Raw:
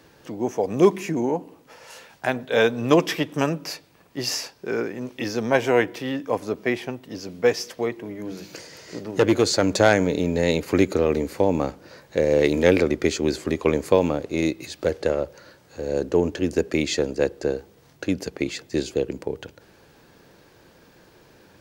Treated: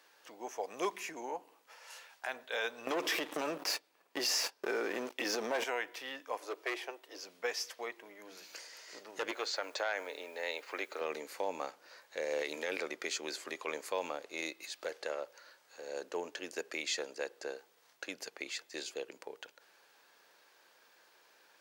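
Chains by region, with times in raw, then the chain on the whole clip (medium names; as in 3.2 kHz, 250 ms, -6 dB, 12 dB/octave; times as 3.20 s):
2.87–5.64 s: waveshaping leveller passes 3 + peaking EQ 300 Hz +10 dB 2.2 oct + compression 12:1, threshold -11 dBFS
6.37–7.24 s: steep high-pass 300 Hz 72 dB/octave + bass shelf 440 Hz +11 dB + hard clipper -15.5 dBFS
9.31–11.01 s: high-pass 410 Hz + distance through air 150 m + word length cut 10-bit, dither triangular
whole clip: high-pass 830 Hz 12 dB/octave; peak limiter -17 dBFS; trim -7 dB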